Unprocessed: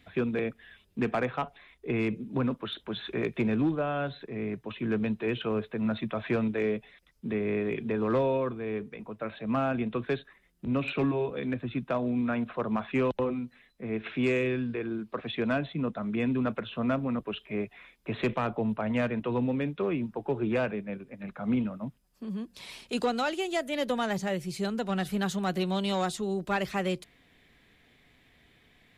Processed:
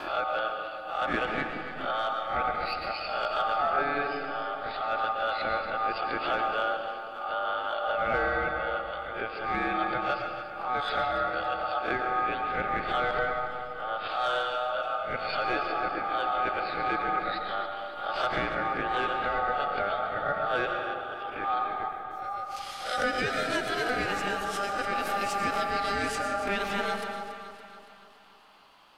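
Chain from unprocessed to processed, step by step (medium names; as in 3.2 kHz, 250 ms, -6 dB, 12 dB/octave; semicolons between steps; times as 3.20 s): reverse spectral sustain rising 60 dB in 0.31 s; gate with hold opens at -56 dBFS; in parallel at -2.5 dB: compression, threshold -35 dBFS, peak gain reduction 12 dB; on the sum: ring modulator 1 kHz; echo whose repeats swap between lows and highs 141 ms, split 800 Hz, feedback 75%, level -9.5 dB; on a send at -4 dB: reverberation RT60 1.5 s, pre-delay 75 ms; on the sum: swell ahead of each attack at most 67 dB/s; trim -1.5 dB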